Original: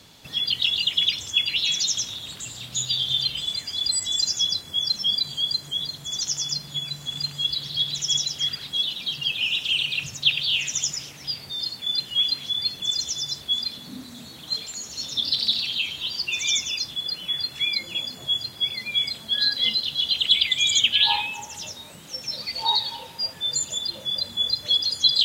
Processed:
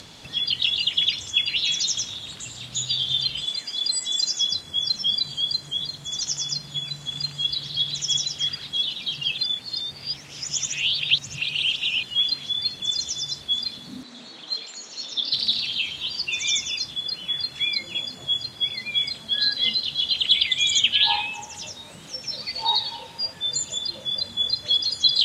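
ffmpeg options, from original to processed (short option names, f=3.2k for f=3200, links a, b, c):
-filter_complex "[0:a]asettb=1/sr,asplit=3[a][b][c];[a]atrim=end=3.464[d];[b]atrim=start=3.46:end=4.52,asetpts=PTS-STARTPTS,afade=t=in:d=0.004:c=qsin,afade=t=out:st=1.056:d=0.004:c=qsin,highpass=190[e];[c]atrim=start=4.516[f];[d][e]acrossfade=d=0.004:c1=hsin:c2=qsin[g];[g][f]acrossfade=d=0.004:c1=qsin:c2=hsin,asettb=1/sr,asplit=3[h][i][j];[h]atrim=end=14.034[k];[i]atrim=start=14.03:end=15.33,asetpts=PTS-STARTPTS,afade=t=in:d=0.004:c=qsin,afade=t=out:st=1.296:d=0.004:c=qsin,highpass=290,lowpass=5.8k[l];[j]atrim=start=15.326[m];[k][l]acrossfade=d=0.004:c1=hsin:c2=qsin[n];[n][m]acrossfade=d=0.004:c1=qsin:c2=hsin,asplit=3[o][p][q];[o]atrim=end=9.382[r];[p]atrim=start=9.378:end=12.032,asetpts=PTS-STARTPTS,areverse[s];[q]atrim=start=12.028[t];[r][s]acrossfade=d=0.004:c1=hsin:c2=hsin[u];[u][t]acrossfade=d=0.004:c1=hsin:c2=hsin,acompressor=mode=upward:threshold=-37dB:ratio=2.5,lowpass=8.8k"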